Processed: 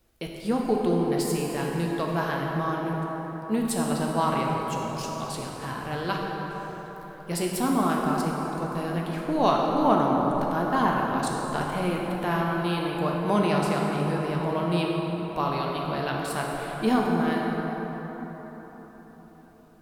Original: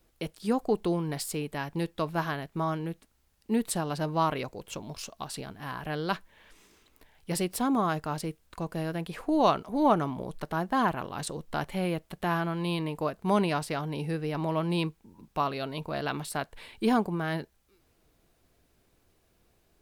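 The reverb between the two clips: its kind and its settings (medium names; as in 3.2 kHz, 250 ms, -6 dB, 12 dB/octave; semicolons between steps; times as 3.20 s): plate-style reverb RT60 4.8 s, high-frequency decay 0.45×, DRR -2 dB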